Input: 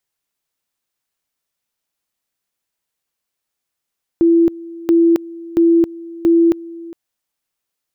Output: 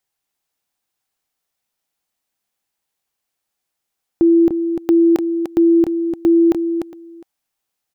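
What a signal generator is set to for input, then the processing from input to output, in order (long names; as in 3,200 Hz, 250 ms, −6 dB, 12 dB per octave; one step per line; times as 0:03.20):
tone at two levels in turn 335 Hz −8 dBFS, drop 20.5 dB, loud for 0.27 s, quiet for 0.41 s, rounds 4
parametric band 780 Hz +6.5 dB 0.22 octaves
single-tap delay 297 ms −6.5 dB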